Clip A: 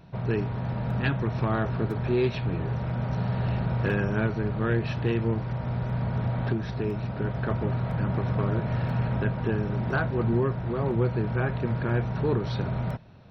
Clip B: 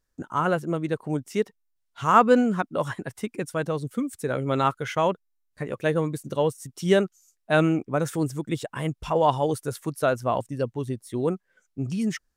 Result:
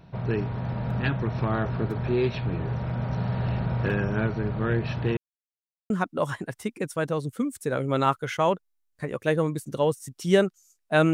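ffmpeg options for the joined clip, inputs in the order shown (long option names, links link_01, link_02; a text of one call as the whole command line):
ffmpeg -i cue0.wav -i cue1.wav -filter_complex "[0:a]apad=whole_dur=11.13,atrim=end=11.13,asplit=2[link_01][link_02];[link_01]atrim=end=5.17,asetpts=PTS-STARTPTS,afade=type=out:start_time=5.166:duration=0.004:curve=hsin[link_03];[link_02]atrim=start=5.17:end=5.9,asetpts=PTS-STARTPTS,volume=0[link_04];[1:a]atrim=start=2.48:end=7.71,asetpts=PTS-STARTPTS,afade=type=in:duration=0.004:curve=hsin[link_05];[link_03][link_04][link_05]concat=n=3:v=0:a=1" out.wav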